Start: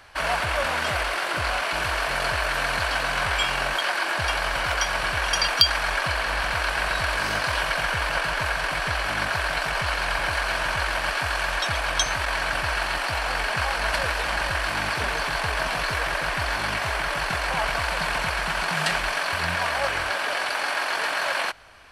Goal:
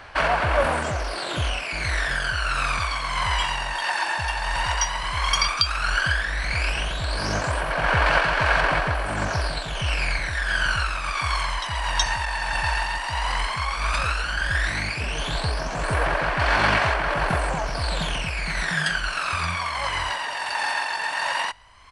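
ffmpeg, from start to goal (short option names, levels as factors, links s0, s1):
-af "aphaser=in_gain=1:out_gain=1:delay=1.1:decay=0.69:speed=0.12:type=sinusoidal,tremolo=f=1.5:d=0.35,aresample=22050,aresample=44100,volume=0.841"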